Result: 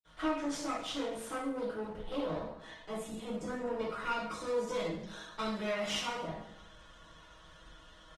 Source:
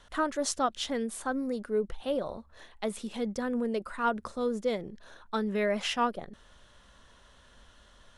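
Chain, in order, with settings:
0:02.77–0:03.54: gain on a spectral selection 450–6,300 Hz −8 dB
0:04.01–0:06.02: high-shelf EQ 2,800 Hz +10.5 dB
comb filter 6.3 ms, depth 52%
dynamic equaliser 110 Hz, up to +5 dB, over −57 dBFS, Q 3.1
downward compressor 4 to 1, threshold −31 dBFS, peak gain reduction 10 dB
asymmetric clip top −39.5 dBFS, bottom −25 dBFS
bucket-brigade delay 73 ms, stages 1,024, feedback 64%, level −21.5 dB
convolution reverb RT60 0.75 s, pre-delay 47 ms
level +7.5 dB
Opus 20 kbit/s 48,000 Hz

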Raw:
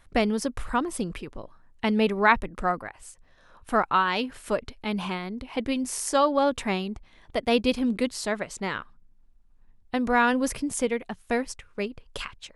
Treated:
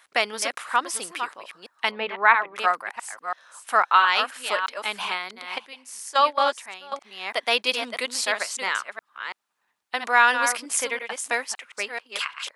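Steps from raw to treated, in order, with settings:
delay that plays each chunk backwards 333 ms, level −7.5 dB
0:01.91–0:02.56: high-frequency loss of the air 410 metres
0:05.58–0:06.92: noise gate −21 dBFS, range −14 dB
high-pass filter 1,000 Hz 12 dB per octave
level +7.5 dB

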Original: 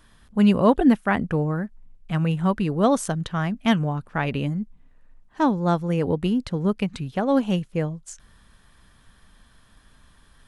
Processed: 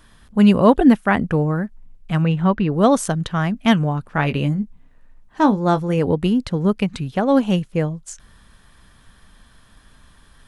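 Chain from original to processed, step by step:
0:02.21–0:02.72: low-pass filter 5,400 Hz → 2,900 Hz 12 dB per octave
0:04.13–0:05.99: double-tracking delay 20 ms −10 dB
level +4.5 dB

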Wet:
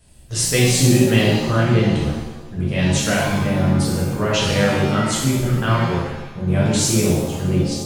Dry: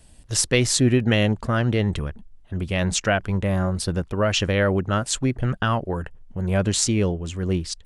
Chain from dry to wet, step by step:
reverb with rising layers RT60 1 s, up +7 semitones, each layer −8 dB, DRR −6.5 dB
level −4.5 dB

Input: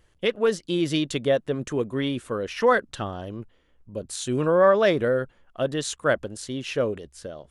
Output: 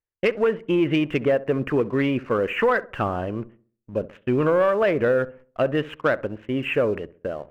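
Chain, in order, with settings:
Butterworth low-pass 2,800 Hz 72 dB per octave
noise gate −48 dBFS, range −33 dB
low-shelf EQ 320 Hz −5 dB
downward compressor 6 to 1, threshold −25 dBFS, peak gain reduction 11 dB
leveller curve on the samples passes 1
feedback echo with a low-pass in the loop 66 ms, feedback 41%, low-pass 1,200 Hz, level −17 dB
level +5.5 dB

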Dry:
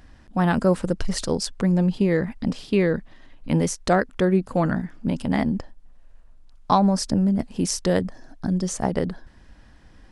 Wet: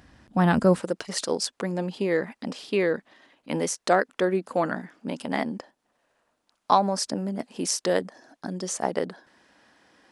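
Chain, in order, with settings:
high-pass filter 82 Hz 12 dB per octave, from 0:00.80 350 Hz

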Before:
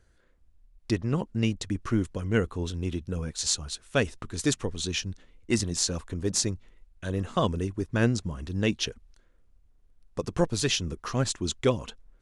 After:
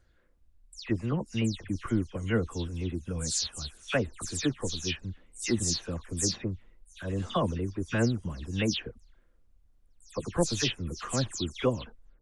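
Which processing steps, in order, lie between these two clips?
every frequency bin delayed by itself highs early, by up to 167 ms
level −2 dB

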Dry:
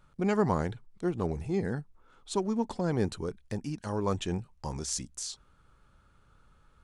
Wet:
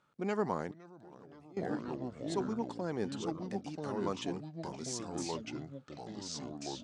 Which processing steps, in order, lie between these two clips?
delay with pitch and tempo change per echo 457 ms, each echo −3 semitones, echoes 3
0:00.71–0:01.57: output level in coarse steps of 23 dB
band-pass filter 210–7,500 Hz
level −5.5 dB

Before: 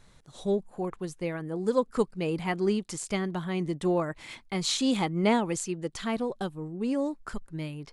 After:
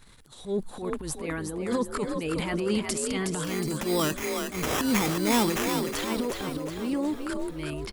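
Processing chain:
transient designer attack −10 dB, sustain +9 dB
graphic EQ with 15 bands 160 Hz −5 dB, 630 Hz −7 dB, 6,300 Hz −7 dB
0:03.44–0:05.82: sample-rate reduction 4,400 Hz, jitter 0%
high-shelf EQ 3,900 Hz +6.5 dB
echo with shifted repeats 366 ms, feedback 52%, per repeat +44 Hz, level −5.5 dB
level +2.5 dB

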